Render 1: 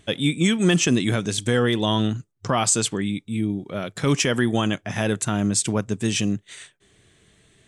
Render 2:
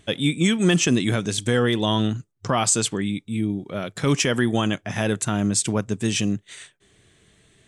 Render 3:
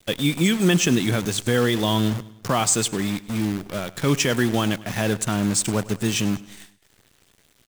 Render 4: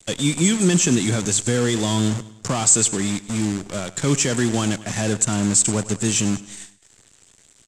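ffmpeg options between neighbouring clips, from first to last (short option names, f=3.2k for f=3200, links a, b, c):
-af anull
-af "acrusher=bits=6:dc=4:mix=0:aa=0.000001,aecho=1:1:102|204|306|408:0.106|0.0508|0.0244|0.0117"
-filter_complex "[0:a]acrossover=split=370[a][b];[b]asoftclip=type=tanh:threshold=-23.5dB[c];[a][c]amix=inputs=2:normalize=0,lowpass=f=7.6k:t=q:w=5.4,volume=1.5dB"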